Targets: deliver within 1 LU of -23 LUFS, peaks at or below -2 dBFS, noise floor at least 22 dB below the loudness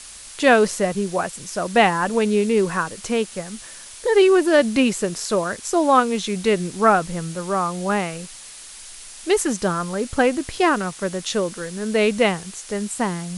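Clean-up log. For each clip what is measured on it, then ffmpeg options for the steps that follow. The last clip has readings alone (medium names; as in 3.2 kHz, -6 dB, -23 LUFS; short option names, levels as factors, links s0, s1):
noise floor -40 dBFS; noise floor target -43 dBFS; loudness -20.5 LUFS; peak level -2.5 dBFS; loudness target -23.0 LUFS
-> -af "afftdn=nr=6:nf=-40"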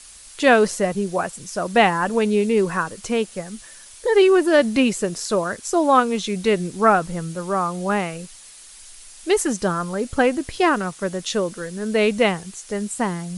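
noise floor -44 dBFS; loudness -20.5 LUFS; peak level -2.5 dBFS; loudness target -23.0 LUFS
-> -af "volume=0.75"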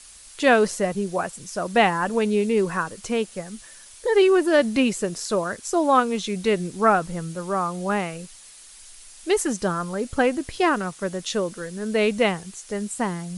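loudness -23.0 LUFS; peak level -5.0 dBFS; noise floor -46 dBFS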